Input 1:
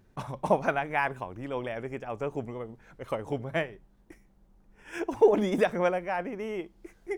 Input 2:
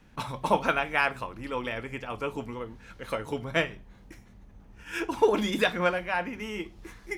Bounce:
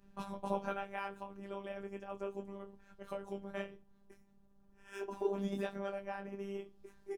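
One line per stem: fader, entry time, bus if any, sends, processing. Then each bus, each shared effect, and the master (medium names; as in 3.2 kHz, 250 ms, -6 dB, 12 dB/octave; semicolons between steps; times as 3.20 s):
-6.5 dB, 0.00 s, no send, compression 2.5:1, threshold -31 dBFS, peak gain reduction 11 dB
-4.0 dB, 10 ms, no send, tilt shelf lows +4.5 dB; endless flanger 10.6 ms +0.34 Hz; auto duck -9 dB, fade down 0.95 s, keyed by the first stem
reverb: none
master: peaking EQ 2.1 kHz -8.5 dB 0.23 oct; robot voice 198 Hz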